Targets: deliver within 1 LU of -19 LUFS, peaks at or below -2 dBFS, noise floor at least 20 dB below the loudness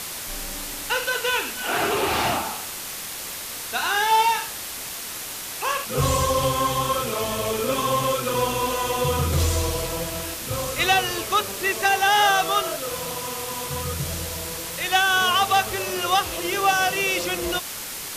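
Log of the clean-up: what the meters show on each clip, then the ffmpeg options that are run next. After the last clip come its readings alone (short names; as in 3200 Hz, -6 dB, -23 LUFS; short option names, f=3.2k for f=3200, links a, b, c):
noise floor -33 dBFS; noise floor target -43 dBFS; loudness -23.0 LUFS; peak -7.0 dBFS; loudness target -19.0 LUFS
-> -af "afftdn=nr=10:nf=-33"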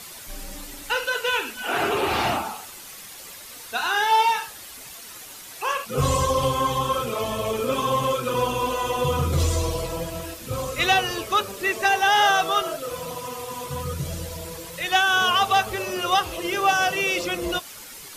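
noise floor -41 dBFS; noise floor target -43 dBFS
-> -af "afftdn=nr=6:nf=-41"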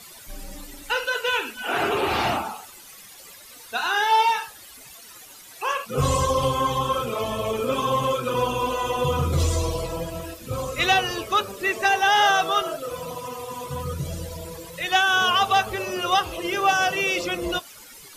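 noise floor -45 dBFS; loudness -23.5 LUFS; peak -7.5 dBFS; loudness target -19.0 LUFS
-> -af "volume=4.5dB"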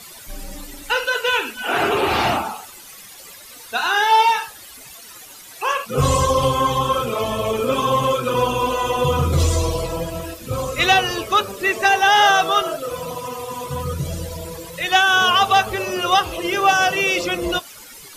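loudness -19.0 LUFS; peak -3.0 dBFS; noise floor -41 dBFS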